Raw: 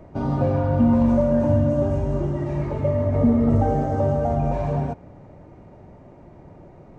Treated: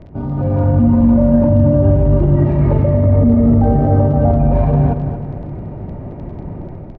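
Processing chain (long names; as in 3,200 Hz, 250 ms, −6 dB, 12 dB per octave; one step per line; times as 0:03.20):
low-shelf EQ 300 Hz +9.5 dB
brickwall limiter −16 dBFS, peak gain reduction 14.5 dB
automatic gain control gain up to 11 dB
surface crackle 12 per second −27 dBFS
high-frequency loss of the air 250 metres
on a send: repeating echo 228 ms, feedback 44%, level −9 dB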